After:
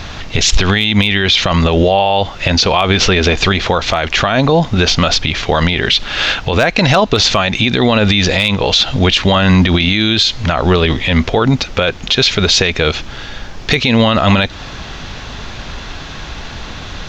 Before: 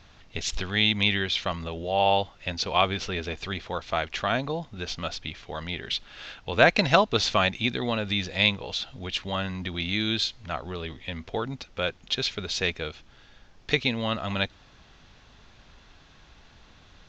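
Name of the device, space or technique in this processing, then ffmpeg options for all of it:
loud club master: -af "acompressor=threshold=-30dB:ratio=2,asoftclip=type=hard:threshold=-16dB,alimiter=level_in=27.5dB:limit=-1dB:release=50:level=0:latency=1,volume=-1dB"

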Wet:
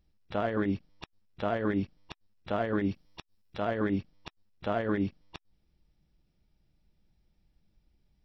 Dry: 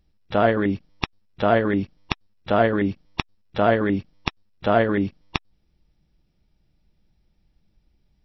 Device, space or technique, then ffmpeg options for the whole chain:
de-esser from a sidechain: -filter_complex "[0:a]asettb=1/sr,asplit=3[a][b][c];[a]atrim=end=2.914[d];[b]atrim=start=2.91:end=3.65,asetpts=PTS-STARTPTS,afade=t=in:d=0.004:c=qsin,afade=t=out:st=0.736:d=0.004:c=qsin,aemphasis=mode=production:type=cd[e];[c]atrim=start=3.646[f];[d][e]acrossfade=d=0.004:c1=hsin:c2=qsin[g];[g][f]acrossfade=d=0.004:c1=qsin:c2=hsin,asplit=2[h][i];[i]highpass=4.5k,apad=whole_len=363722[j];[h][j]sidechaincompress=threshold=-45dB:ratio=12:attack=3.7:release=88,volume=-5dB"

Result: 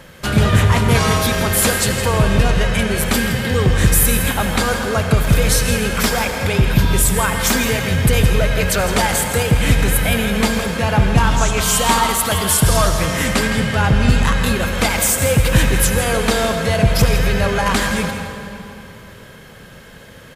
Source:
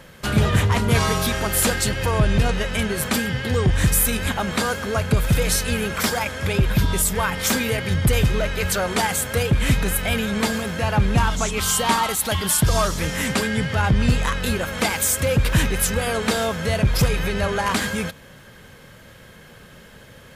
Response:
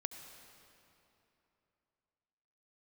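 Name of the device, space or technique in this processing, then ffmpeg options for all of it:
cave: -filter_complex "[0:a]aecho=1:1:164:0.266[a];[1:a]atrim=start_sample=2205[b];[a][b]afir=irnorm=-1:irlink=0,volume=6dB"

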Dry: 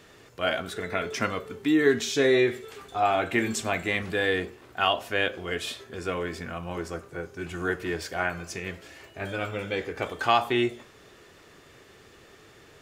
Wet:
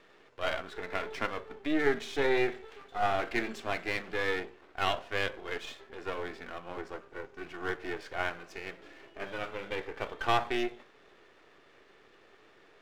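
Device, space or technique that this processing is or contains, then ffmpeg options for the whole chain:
crystal radio: -filter_complex "[0:a]asettb=1/sr,asplit=3[a][b][c];[a]atrim=end=8.794[d];[b]atrim=start=8.79:end=9.24,asetpts=PTS-STARTPTS,afade=t=in:d=0.004:c=qsin,afade=t=out:st=0.446:d=0.004:c=qsin,equalizer=f=290:t=o:w=1.1:g=7.5[e];[c]atrim=start=9.236[f];[d][e]acrossfade=d=0.004:c1=hsin:c2=qsin[g];[g][f]acrossfade=d=0.004:c1=qsin:c2=hsin,highpass=280,lowpass=3.1k,aeval=exprs='if(lt(val(0),0),0.251*val(0),val(0))':c=same,volume=-2dB"

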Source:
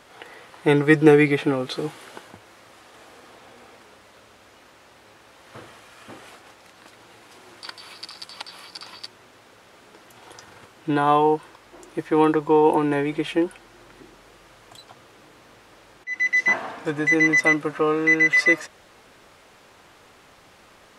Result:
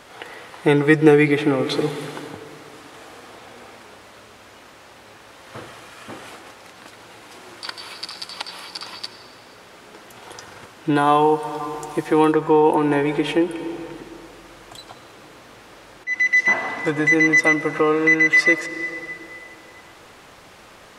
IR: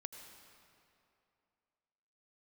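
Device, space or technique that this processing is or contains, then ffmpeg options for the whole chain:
ducked reverb: -filter_complex "[0:a]asplit=3[a][b][c];[1:a]atrim=start_sample=2205[d];[b][d]afir=irnorm=-1:irlink=0[e];[c]apad=whole_len=925293[f];[e][f]sidechaincompress=threshold=-22dB:ratio=8:attack=9.1:release=390,volume=6dB[g];[a][g]amix=inputs=2:normalize=0,asettb=1/sr,asplit=3[h][i][j];[h]atrim=end=10.954[k];[i]atrim=start=10.95:end=12.32,asetpts=PTS-STARTPTS,afade=t=in:d=0.004:c=qsin,afade=t=out:st=1.366:d=0.004:c=qsin,highshelf=f=4.9k:g=7.5[l];[j]atrim=start=12.316[m];[k][l]acrossfade=d=0.004:c1=hsin:c2=qsin[n];[n][m]acrossfade=d=0.004:c1=qsin:c2=hsin,volume=-1dB"

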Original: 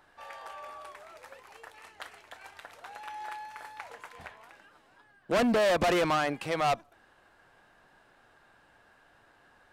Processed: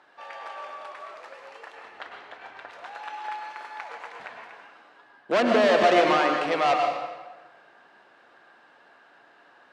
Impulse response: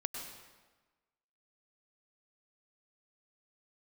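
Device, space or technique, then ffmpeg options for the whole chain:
supermarket ceiling speaker: -filter_complex "[0:a]asettb=1/sr,asplit=3[a][b][c];[a]atrim=end=1.754[d];[b]atrim=start=1.75:end=2.7,asetpts=PTS-STARTPTS,afade=t=in:d=0.004:c=qsin,afade=t=out:st=0.946:d=0.004:c=qsin,aemphasis=mode=reproduction:type=bsi[e];[c]atrim=start=2.696[f];[d][e]acrossfade=d=0.004:c1=hsin:c2=qsin[g];[g][f]acrossfade=d=0.004:c1=qsin:c2=hsin,highpass=280,lowpass=5k[h];[1:a]atrim=start_sample=2205[i];[h][i]afir=irnorm=-1:irlink=0,volume=5.5dB"

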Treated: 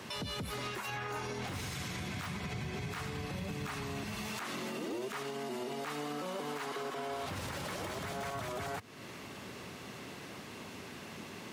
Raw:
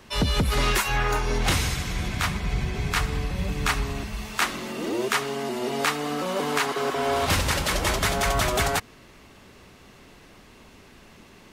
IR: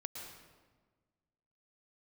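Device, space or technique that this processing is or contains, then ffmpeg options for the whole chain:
podcast mastering chain: -af "highpass=f=94:w=0.5412,highpass=f=94:w=1.3066,deesser=0.65,acompressor=threshold=-40dB:ratio=3,alimiter=level_in=10.5dB:limit=-24dB:level=0:latency=1:release=76,volume=-10.5dB,volume=4.5dB" -ar 48000 -c:a libmp3lame -b:a 128k

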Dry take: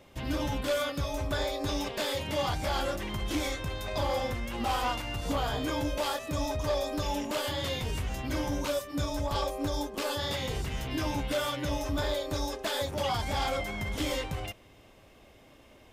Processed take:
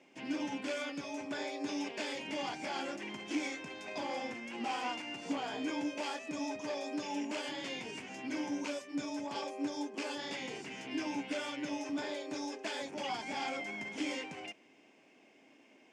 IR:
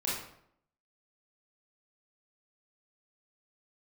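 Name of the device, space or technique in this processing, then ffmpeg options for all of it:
television speaker: -af "highpass=f=210:w=0.5412,highpass=f=210:w=1.3066,equalizer=f=280:t=q:w=4:g=4,equalizer=f=550:t=q:w=4:g=-6,equalizer=f=1.2k:t=q:w=4:g=-8,equalizer=f=2.4k:t=q:w=4:g=6,equalizer=f=3.8k:t=q:w=4:g=-9,lowpass=f=7.5k:w=0.5412,lowpass=f=7.5k:w=1.3066,volume=-5dB"

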